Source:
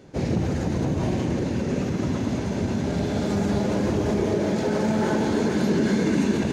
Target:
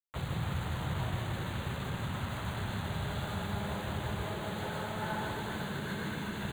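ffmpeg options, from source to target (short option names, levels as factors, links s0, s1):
-af "equalizer=f=5100:t=o:w=0.56:g=10,acrusher=bits=4:mix=0:aa=0.000001,asuperstop=centerf=5300:order=4:qfactor=1.6,acompressor=threshold=0.1:ratio=6,firequalizer=gain_entry='entry(130,0);entry(250,-15);entry(850,0);entry(1400,2);entry(2400,-5);entry(3500,0);entry(9200,-13)':delay=0.05:min_phase=1,aecho=1:1:155:0.631,volume=0.447"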